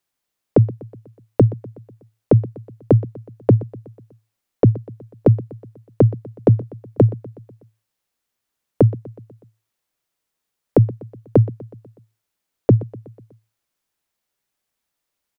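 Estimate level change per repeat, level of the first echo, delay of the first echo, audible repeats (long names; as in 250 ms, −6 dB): −5.0 dB, −19.0 dB, 123 ms, 4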